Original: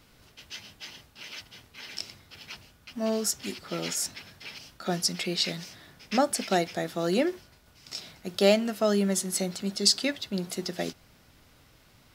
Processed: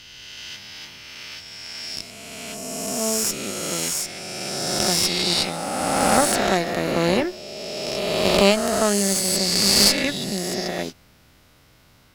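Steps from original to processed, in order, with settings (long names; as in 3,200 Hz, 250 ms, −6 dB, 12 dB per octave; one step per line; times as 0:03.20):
peak hold with a rise ahead of every peak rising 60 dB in 2.84 s
harmonic generator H 4 −11 dB, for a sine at −3.5 dBFS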